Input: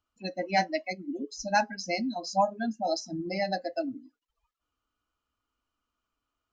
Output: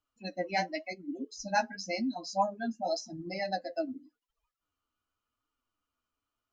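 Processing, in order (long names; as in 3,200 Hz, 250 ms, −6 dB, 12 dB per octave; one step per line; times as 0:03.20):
flanger 0.91 Hz, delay 6.3 ms, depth 6.5 ms, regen +22%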